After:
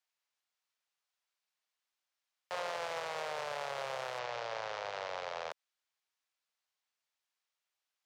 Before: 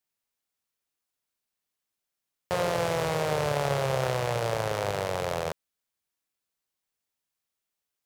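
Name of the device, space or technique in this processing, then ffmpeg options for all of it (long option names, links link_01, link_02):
DJ mixer with the lows and highs turned down: -filter_complex "[0:a]asettb=1/sr,asplit=3[link_01][link_02][link_03];[link_01]atrim=end=4.194[link_04];[link_02]atrim=start=4.19:end=5.51,asetpts=PTS-STARTPTS,afade=type=in:duration=0.004:curve=qsin,afade=type=out:start_time=1.316:duration=0.004:curve=qsin,lowpass=frequency=6300:width=0.5412,lowpass=frequency=6300:width=1.3066[link_05];[link_03]atrim=start=5.506[link_06];[link_04][link_05]acrossfade=duration=0.004:curve1=hsin:curve2=qsin[link_07];[link_07][link_06]acrossfade=duration=0.004:curve1=qsin:curve2=hsin,acrossover=split=560 6700:gain=0.0794 1 0.224[link_08][link_09][link_10];[link_08][link_09][link_10]amix=inputs=3:normalize=0,alimiter=level_in=4.5dB:limit=-24dB:level=0:latency=1:release=82,volume=-4.5dB,volume=1dB"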